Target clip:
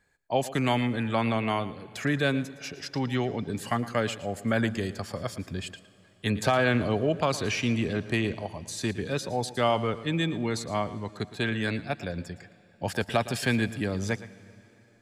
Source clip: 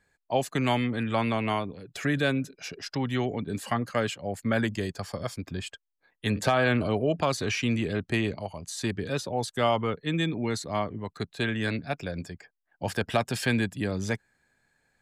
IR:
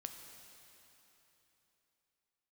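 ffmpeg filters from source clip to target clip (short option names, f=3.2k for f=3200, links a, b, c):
-filter_complex "[0:a]asplit=2[a][b];[1:a]atrim=start_sample=2205,adelay=114[c];[b][c]afir=irnorm=-1:irlink=0,volume=-11dB[d];[a][d]amix=inputs=2:normalize=0"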